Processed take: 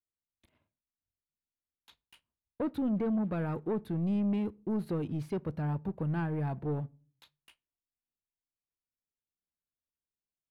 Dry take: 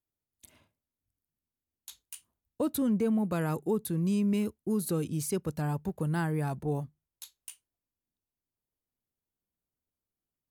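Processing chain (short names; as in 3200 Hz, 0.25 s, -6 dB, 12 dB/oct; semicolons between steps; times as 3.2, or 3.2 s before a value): high shelf 5600 Hz +6 dB; sample leveller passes 2; air absorption 400 m; on a send: reverb RT60 0.40 s, pre-delay 3 ms, DRR 21.5 dB; on the sum: gain -7 dB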